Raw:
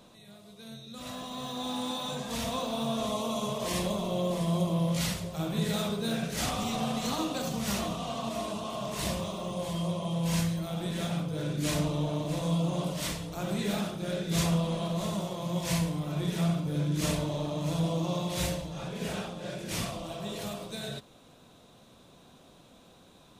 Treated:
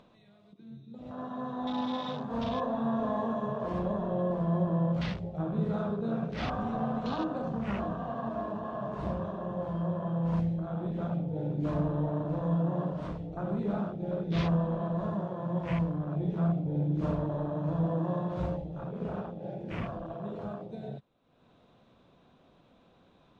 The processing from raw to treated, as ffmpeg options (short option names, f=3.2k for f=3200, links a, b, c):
-filter_complex "[0:a]asettb=1/sr,asplit=3[a][b][c];[a]atrim=end=1.144[d];[b]atrim=start=1.14:end=3.33,asetpts=PTS-STARTPTS,afade=t=in:d=0.004:c=qsin,afade=t=out:st=2.186:d=0.004:c=qsin,asplit=2[e][f];[f]adelay=39,volume=-3dB[g];[e][g]amix=inputs=2:normalize=0,atrim=end_sample=96579[h];[c]atrim=start=3.326[i];[d][h]acrossfade=d=0.004:c1=hsin:c2=qsin[j];[j][i]acrossfade=d=0.004:c1=qsin:c2=hsin,afwtdn=0.0141,lowpass=2.7k,acompressor=mode=upward:threshold=-50dB:ratio=2.5"